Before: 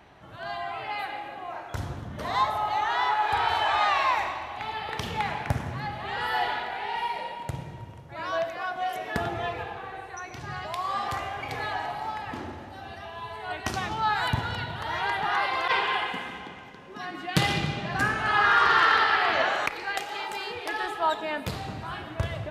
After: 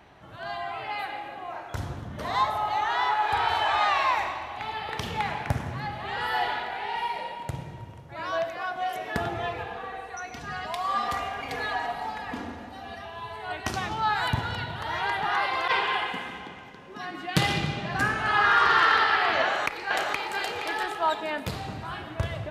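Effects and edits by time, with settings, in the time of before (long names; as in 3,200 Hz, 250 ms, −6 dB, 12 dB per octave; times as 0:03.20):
0:09.70–0:13.02: comb filter 4.2 ms, depth 61%
0:19.43–0:20.36: delay throw 470 ms, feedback 30%, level −2 dB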